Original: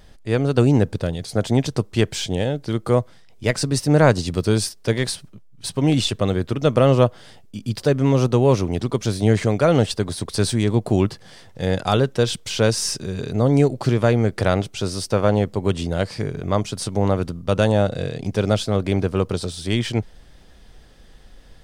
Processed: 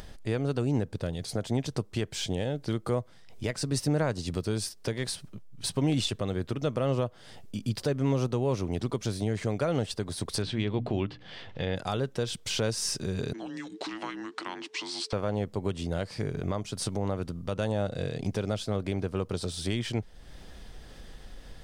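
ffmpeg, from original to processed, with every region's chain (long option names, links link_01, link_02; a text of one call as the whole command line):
ffmpeg -i in.wav -filter_complex "[0:a]asettb=1/sr,asplit=3[link_01][link_02][link_03];[link_01]atrim=end=10.424[link_04];[link_02]atrim=start=10.42:end=11.76,asetpts=PTS-STARTPTS,afade=type=in:duration=0.004:curve=qsin,afade=type=out:start_time=1.336:duration=0.004:curve=qsin,lowpass=frequency=3100:width_type=q:width=2,bandreject=frequency=60:width_type=h:width=6,bandreject=frequency=120:width_type=h:width=6,bandreject=frequency=180:width_type=h:width=6,bandreject=frequency=240:width_type=h:width=6,bandreject=frequency=300:width_type=h:width=6[link_05];[link_03]atrim=start=11.756[link_06];[link_04][link_05]acrossfade=duration=0.004:curve1=hsin:curve2=qsin[link_07];[link_07][link_06]acrossfade=duration=0.004:curve1=qsin:curve2=hsin,asettb=1/sr,asplit=3[link_08][link_09][link_10];[link_08]atrim=end=13.334[link_11];[link_09]atrim=start=13.33:end=15.13,asetpts=PTS-STARTPTS,afade=type=in:duration=0.004:curve=qsin,afade=type=out:start_time=1.796:duration=0.004:curve=qsin,acompressor=threshold=-19dB:ratio=4:attack=3.2:release=140:knee=1:detection=peak,afreqshift=-440,highpass=630,lowpass=5600[link_12];[link_10]atrim=start=15.126[link_13];[link_11][link_12]acrossfade=duration=0.004:curve1=hsin:curve2=qsin[link_14];[link_14][link_13]acrossfade=duration=0.004:curve1=qsin:curve2=hsin,acompressor=threshold=-35dB:ratio=1.5,alimiter=limit=-18dB:level=0:latency=1:release=349,acompressor=mode=upward:threshold=-40dB:ratio=2.5" out.wav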